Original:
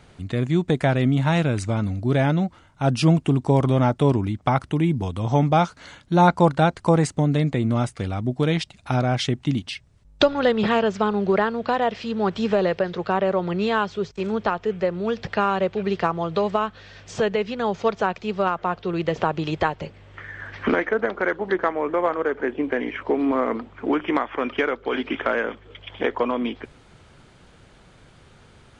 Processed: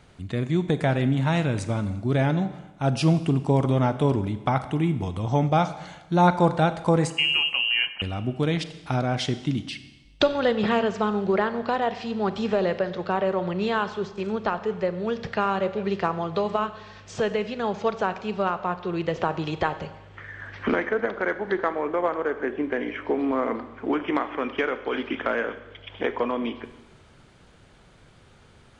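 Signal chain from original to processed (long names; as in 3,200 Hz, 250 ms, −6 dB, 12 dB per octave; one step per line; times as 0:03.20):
0:07.10–0:08.02: voice inversion scrambler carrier 3,000 Hz
four-comb reverb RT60 1.1 s, combs from 30 ms, DRR 11.5 dB
level −3 dB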